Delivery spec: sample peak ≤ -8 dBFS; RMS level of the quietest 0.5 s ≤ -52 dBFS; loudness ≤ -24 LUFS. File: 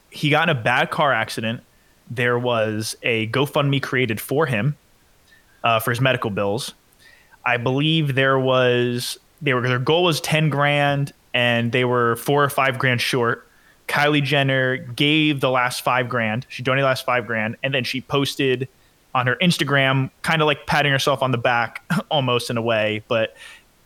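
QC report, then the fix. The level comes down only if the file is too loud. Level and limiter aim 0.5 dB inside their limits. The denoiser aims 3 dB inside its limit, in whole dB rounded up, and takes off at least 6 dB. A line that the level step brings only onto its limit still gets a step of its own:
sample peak -2.5 dBFS: fail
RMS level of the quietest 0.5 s -56 dBFS: OK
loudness -20.0 LUFS: fail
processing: gain -4.5 dB; limiter -8.5 dBFS

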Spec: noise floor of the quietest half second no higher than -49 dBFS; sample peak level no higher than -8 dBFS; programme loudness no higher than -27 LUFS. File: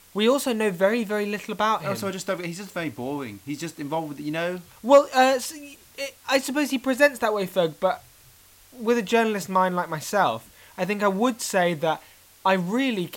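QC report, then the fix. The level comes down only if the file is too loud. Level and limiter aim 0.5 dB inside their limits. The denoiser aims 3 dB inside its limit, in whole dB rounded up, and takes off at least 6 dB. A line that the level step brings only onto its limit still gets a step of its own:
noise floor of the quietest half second -53 dBFS: OK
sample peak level -5.5 dBFS: fail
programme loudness -24.0 LUFS: fail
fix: gain -3.5 dB

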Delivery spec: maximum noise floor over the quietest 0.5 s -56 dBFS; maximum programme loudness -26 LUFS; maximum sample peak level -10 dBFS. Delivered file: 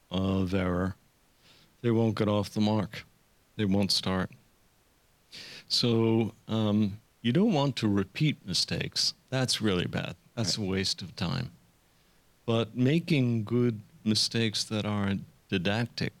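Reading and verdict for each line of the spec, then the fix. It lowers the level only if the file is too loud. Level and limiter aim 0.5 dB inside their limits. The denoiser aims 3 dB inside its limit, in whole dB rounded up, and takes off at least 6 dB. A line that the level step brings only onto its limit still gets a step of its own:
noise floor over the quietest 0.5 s -66 dBFS: OK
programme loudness -28.5 LUFS: OK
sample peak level -11.5 dBFS: OK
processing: none

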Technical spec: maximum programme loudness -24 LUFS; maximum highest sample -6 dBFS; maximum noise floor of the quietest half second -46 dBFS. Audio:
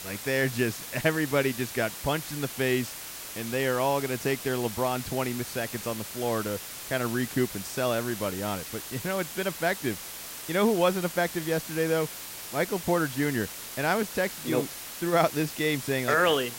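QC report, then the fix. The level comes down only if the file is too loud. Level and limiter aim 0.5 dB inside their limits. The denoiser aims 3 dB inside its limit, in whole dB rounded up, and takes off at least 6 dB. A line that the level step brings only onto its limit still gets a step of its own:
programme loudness -28.5 LUFS: OK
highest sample -9.0 dBFS: OK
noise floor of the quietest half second -40 dBFS: fail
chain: denoiser 9 dB, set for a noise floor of -40 dBFS

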